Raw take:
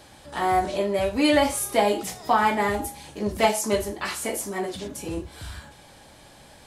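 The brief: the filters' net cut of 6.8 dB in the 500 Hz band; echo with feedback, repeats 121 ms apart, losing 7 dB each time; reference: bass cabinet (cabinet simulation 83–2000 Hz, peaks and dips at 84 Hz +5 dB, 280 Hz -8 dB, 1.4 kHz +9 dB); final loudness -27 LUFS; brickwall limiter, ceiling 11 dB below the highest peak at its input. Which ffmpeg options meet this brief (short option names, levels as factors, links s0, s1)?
-af "equalizer=f=500:t=o:g=-9,alimiter=limit=0.0944:level=0:latency=1,highpass=f=83:w=0.5412,highpass=f=83:w=1.3066,equalizer=f=84:t=q:w=4:g=5,equalizer=f=280:t=q:w=4:g=-8,equalizer=f=1400:t=q:w=4:g=9,lowpass=f=2000:w=0.5412,lowpass=f=2000:w=1.3066,aecho=1:1:121|242|363|484|605:0.447|0.201|0.0905|0.0407|0.0183,volume=1.78"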